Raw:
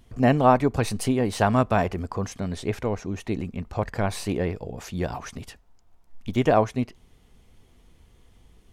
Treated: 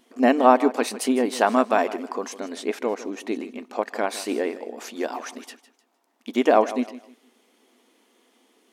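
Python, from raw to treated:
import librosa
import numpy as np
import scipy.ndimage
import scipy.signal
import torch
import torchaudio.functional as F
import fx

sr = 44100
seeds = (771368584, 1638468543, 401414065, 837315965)

p1 = fx.brickwall_highpass(x, sr, low_hz=220.0)
p2 = p1 + fx.echo_feedback(p1, sr, ms=155, feedback_pct=28, wet_db=-15.5, dry=0)
y = p2 * 10.0 ** (2.5 / 20.0)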